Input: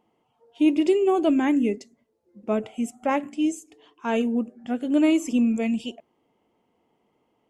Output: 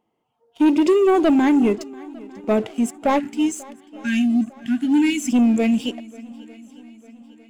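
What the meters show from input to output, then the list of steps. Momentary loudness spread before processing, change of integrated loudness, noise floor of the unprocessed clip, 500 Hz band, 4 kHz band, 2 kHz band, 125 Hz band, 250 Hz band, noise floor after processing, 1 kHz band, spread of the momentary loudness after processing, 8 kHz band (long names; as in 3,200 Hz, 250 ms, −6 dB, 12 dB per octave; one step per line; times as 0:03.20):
11 LU, +4.5 dB, −71 dBFS, +4.0 dB, +5.5 dB, +5.5 dB, can't be measured, +4.5 dB, −72 dBFS, +5.0 dB, 20 LU, +7.0 dB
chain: time-frequency box erased 0:03.20–0:05.32, 320–1,400 Hz
leveller curve on the samples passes 2
on a send: feedback echo with a long and a short gap by turns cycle 901 ms, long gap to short 1.5 to 1, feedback 45%, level −22 dB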